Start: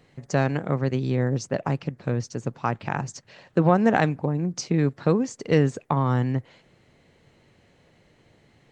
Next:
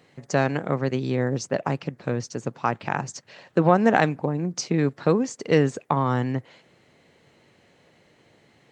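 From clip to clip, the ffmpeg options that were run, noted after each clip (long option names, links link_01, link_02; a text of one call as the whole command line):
ffmpeg -i in.wav -af "highpass=frequency=210:poles=1,volume=2.5dB" out.wav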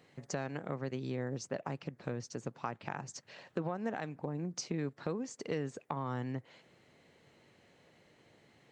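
ffmpeg -i in.wav -af "alimiter=limit=-10dB:level=0:latency=1:release=388,acompressor=threshold=-33dB:ratio=2,volume=-6dB" out.wav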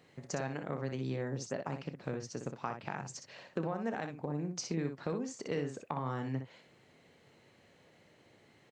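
ffmpeg -i in.wav -af "aecho=1:1:30|61:0.168|0.447" out.wav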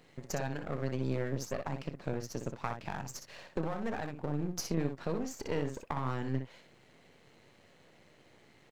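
ffmpeg -i in.wav -af "aeval=exprs='if(lt(val(0),0),0.251*val(0),val(0))':channel_layout=same,volume=5dB" out.wav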